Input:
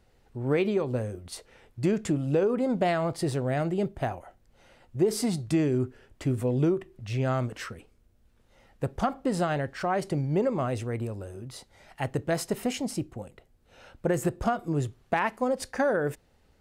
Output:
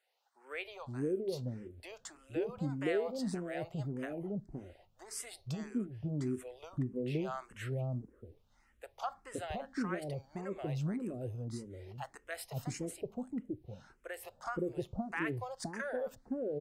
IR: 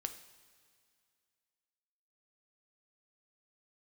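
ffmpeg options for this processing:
-filter_complex "[0:a]acrossover=split=630[link_01][link_02];[link_01]adelay=520[link_03];[link_03][link_02]amix=inputs=2:normalize=0,asplit=2[link_04][link_05];[link_05]afreqshift=1.7[link_06];[link_04][link_06]amix=inputs=2:normalize=1,volume=-6dB"

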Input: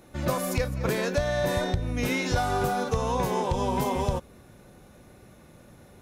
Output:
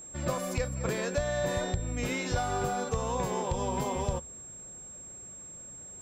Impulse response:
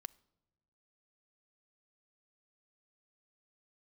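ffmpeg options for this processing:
-filter_complex "[0:a]aeval=exprs='val(0)+0.0141*sin(2*PI*7500*n/s)':channel_layout=same,asplit=2[link_01][link_02];[link_02]lowpass=frequency=12000:width=0.5412,lowpass=frequency=12000:width=1.3066[link_03];[1:a]atrim=start_sample=2205,asetrate=61740,aresample=44100[link_04];[link_03][link_04]afir=irnorm=-1:irlink=0,volume=4.5dB[link_05];[link_01][link_05]amix=inputs=2:normalize=0,volume=-9dB"

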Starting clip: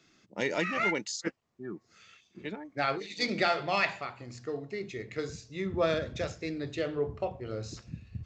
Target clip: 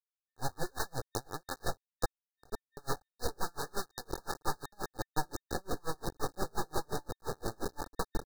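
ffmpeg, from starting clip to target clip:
ffmpeg -i in.wav -af "tiltshelf=frequency=780:gain=8.5,aecho=1:1:772:0.531,aeval=exprs='abs(val(0))':channel_layout=same,acrusher=bits=4:mix=0:aa=0.000001,afftfilt=real='re*(1-between(b*sr/4096,1800,3700))':imag='im*(1-between(b*sr/4096,1800,3700))':win_size=4096:overlap=0.75,acompressor=threshold=-30dB:ratio=12,aecho=1:1:2.4:0.43,aeval=exprs='val(0)*pow(10,-37*(0.5-0.5*cos(2*PI*5.7*n/s))/20)':channel_layout=same,volume=4.5dB" out.wav

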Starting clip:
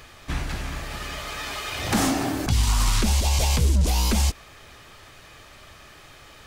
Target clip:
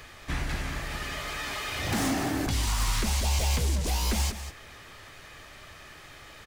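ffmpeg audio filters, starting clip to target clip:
ffmpeg -i in.wav -filter_complex "[0:a]equalizer=frequency=1900:width_type=o:width=0.45:gain=4,acrossover=split=380[link_01][link_02];[link_01]alimiter=limit=-22.5dB:level=0:latency=1[link_03];[link_02]asoftclip=type=tanh:threshold=-26.5dB[link_04];[link_03][link_04]amix=inputs=2:normalize=0,aecho=1:1:196:0.266,volume=-1.5dB" out.wav

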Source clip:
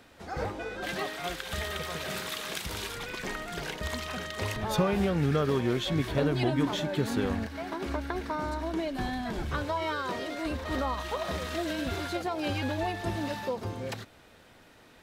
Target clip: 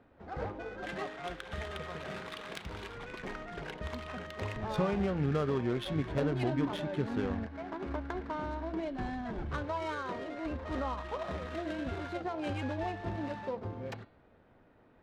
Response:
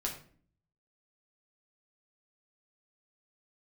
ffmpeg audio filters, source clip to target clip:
-af "adynamicsmooth=sensitivity=4:basefreq=1300,bandreject=frequency=170.3:width_type=h:width=4,bandreject=frequency=340.6:width_type=h:width=4,bandreject=frequency=510.9:width_type=h:width=4,bandreject=frequency=681.2:width_type=h:width=4,bandreject=frequency=851.5:width_type=h:width=4,bandreject=frequency=1021.8:width_type=h:width=4,bandreject=frequency=1192.1:width_type=h:width=4,bandreject=frequency=1362.4:width_type=h:width=4,bandreject=frequency=1532.7:width_type=h:width=4,bandreject=frequency=1703:width_type=h:width=4,bandreject=frequency=1873.3:width_type=h:width=4,bandreject=frequency=2043.6:width_type=h:width=4,bandreject=frequency=2213.9:width_type=h:width=4,bandreject=frequency=2384.2:width_type=h:width=4,bandreject=frequency=2554.5:width_type=h:width=4,bandreject=frequency=2724.8:width_type=h:width=4,bandreject=frequency=2895.1:width_type=h:width=4,bandreject=frequency=3065.4:width_type=h:width=4,bandreject=frequency=3235.7:width_type=h:width=4,bandreject=frequency=3406:width_type=h:width=4,bandreject=frequency=3576.3:width_type=h:width=4,bandreject=frequency=3746.6:width_type=h:width=4,bandreject=frequency=3916.9:width_type=h:width=4,bandreject=frequency=4087.2:width_type=h:width=4,bandreject=frequency=4257.5:width_type=h:width=4,bandreject=frequency=4427.8:width_type=h:width=4,bandreject=frequency=4598.1:width_type=h:width=4,volume=-4dB"

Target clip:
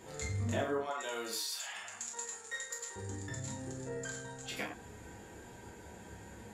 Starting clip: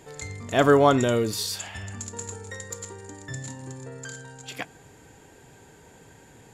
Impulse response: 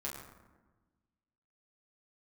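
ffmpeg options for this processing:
-filter_complex "[0:a]asettb=1/sr,asplit=3[link_01][link_02][link_03];[link_01]atrim=end=0.784[link_04];[link_02]atrim=start=0.78:end=2.96,asetpts=PTS-STARTPTS,afade=type=in:duration=0.004:curve=qsin,afade=type=out:start_time=2.176:duration=0.004:curve=qsin,highpass=870[link_05];[link_03]atrim=start=2.956[link_06];[link_04][link_05]acrossfade=duration=0.004:curve1=hsin:curve2=qsin[link_07];[link_07][link_06]acrossfade=duration=0.004:curve1=qsin:curve2=hsin,acompressor=threshold=-33dB:ratio=8[link_08];[1:a]atrim=start_sample=2205,afade=type=out:start_time=0.17:duration=0.01,atrim=end_sample=7938[link_09];[link_08][link_09]afir=irnorm=-1:irlink=0"

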